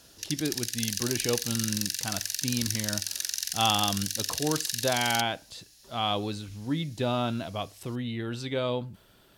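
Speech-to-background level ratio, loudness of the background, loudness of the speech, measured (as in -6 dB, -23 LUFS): -0.5 dB, -30.5 LUFS, -31.0 LUFS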